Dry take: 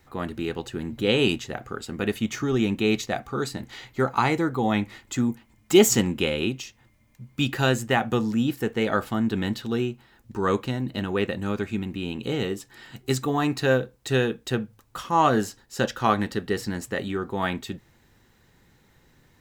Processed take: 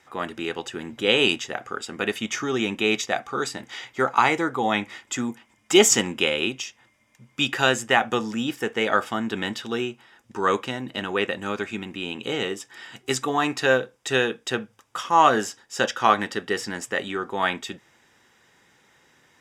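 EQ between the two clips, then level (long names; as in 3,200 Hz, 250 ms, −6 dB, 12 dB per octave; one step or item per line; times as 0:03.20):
high-pass filter 720 Hz 6 dB per octave
Butterworth band-reject 4,200 Hz, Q 6.6
low-pass filter 8,800 Hz 12 dB per octave
+6.0 dB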